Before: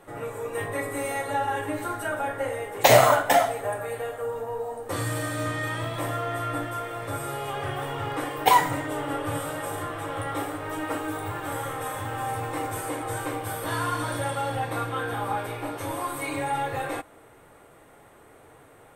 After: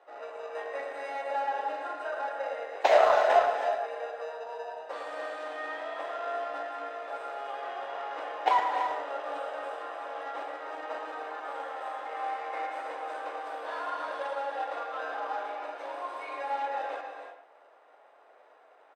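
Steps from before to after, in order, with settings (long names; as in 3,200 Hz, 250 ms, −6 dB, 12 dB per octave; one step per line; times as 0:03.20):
0:12.06–0:12.82: parametric band 2,100 Hz +10 dB 0.31 octaves
in parallel at −4.5 dB: decimation without filtering 40×
on the sum: four-pole ladder high-pass 550 Hz, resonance 45%
high-frequency loss of the air 170 metres
far-end echo of a speakerphone 110 ms, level −8 dB
convolution reverb, pre-delay 3 ms, DRR 5.5 dB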